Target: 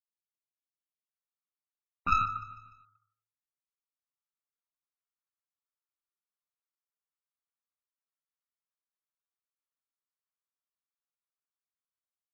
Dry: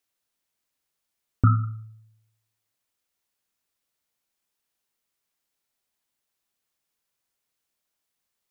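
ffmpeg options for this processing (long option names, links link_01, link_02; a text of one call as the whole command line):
ffmpeg -i in.wav -filter_complex "[0:a]asplit=2[link_01][link_02];[link_02]acompressor=threshold=-25dB:ratio=6,volume=1dB[link_03];[link_01][link_03]amix=inputs=2:normalize=0,bandpass=frequency=1200:width_type=q:width=3.2:csg=0,dynaudnorm=framelen=490:gausssize=3:maxgain=16.5dB,atempo=0.69,aresample=16000,aeval=exprs='clip(val(0),-1,0.0944)':channel_layout=same,aresample=44100,afftdn=noise_reduction=25:noise_floor=-36,aecho=1:1:149|298|447|596:0.126|0.0642|0.0327|0.0167,volume=-8.5dB" out.wav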